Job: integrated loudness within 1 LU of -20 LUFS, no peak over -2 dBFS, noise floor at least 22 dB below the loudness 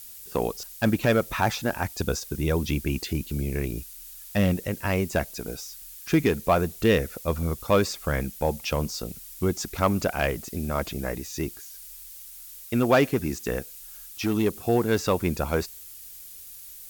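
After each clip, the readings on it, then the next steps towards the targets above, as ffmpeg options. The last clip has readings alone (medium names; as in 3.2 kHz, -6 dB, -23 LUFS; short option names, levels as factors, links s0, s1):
noise floor -44 dBFS; noise floor target -49 dBFS; loudness -26.5 LUFS; peak level -9.0 dBFS; loudness target -20.0 LUFS
-> -af "afftdn=nr=6:nf=-44"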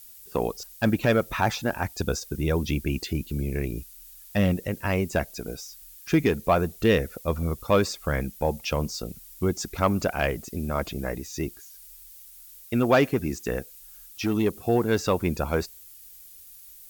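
noise floor -48 dBFS; noise floor target -49 dBFS
-> -af "afftdn=nr=6:nf=-48"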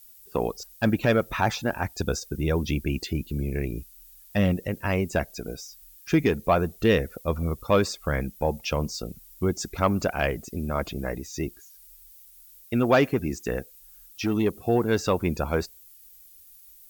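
noise floor -52 dBFS; loudness -26.5 LUFS; peak level -9.0 dBFS; loudness target -20.0 LUFS
-> -af "volume=2.11"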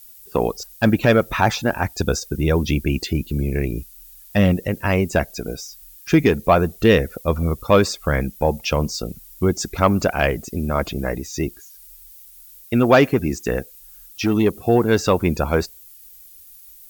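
loudness -20.0 LUFS; peak level -3.0 dBFS; noise floor -45 dBFS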